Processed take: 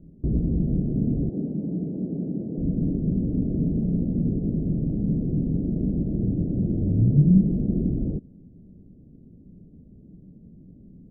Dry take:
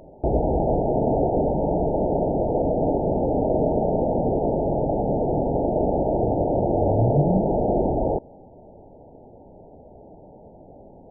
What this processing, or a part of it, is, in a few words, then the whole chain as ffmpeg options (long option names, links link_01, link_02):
the neighbour's flat through the wall: -filter_complex "[0:a]asettb=1/sr,asplit=3[link_01][link_02][link_03];[link_01]atrim=end=1.304[link_04];[link_02]atrim=start=1.3:end=2.58,asetpts=PTS-STARTPTS,afade=type=in:duration=0.004:curve=qsin,afade=type=out:start_time=1.276:duration=0.004:curve=qsin,highpass=210[link_05];[link_03]atrim=start=2.576[link_06];[link_04][link_05]acrossfade=duration=0.004:curve1=hsin:curve2=qsin[link_07];[link_07][link_06]acrossfade=duration=0.004:curve1=qsin:curve2=hsin,lowpass=frequency=280:width=0.5412,lowpass=frequency=280:width=1.3066,equalizer=frequency=180:width_type=o:width=0.65:gain=7"